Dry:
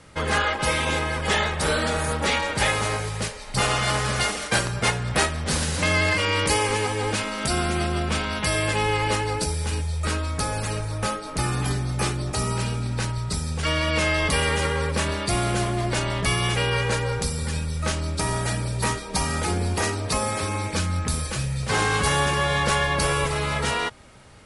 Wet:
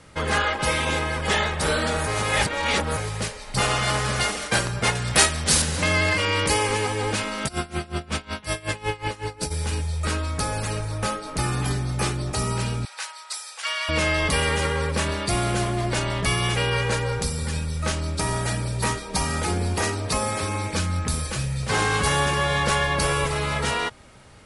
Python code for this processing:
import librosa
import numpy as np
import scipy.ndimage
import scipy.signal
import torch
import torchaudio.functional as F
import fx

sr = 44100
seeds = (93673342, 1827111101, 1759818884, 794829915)

y = fx.high_shelf(x, sr, hz=2900.0, db=10.5, at=(4.95, 5.62))
y = fx.tremolo_db(y, sr, hz=5.4, depth_db=22, at=(7.47, 9.5), fade=0.02)
y = fx.bessel_highpass(y, sr, hz=1100.0, order=6, at=(12.85, 13.89))
y = fx.edit(y, sr, fx.reverse_span(start_s=2.07, length_s=0.9), tone=tone)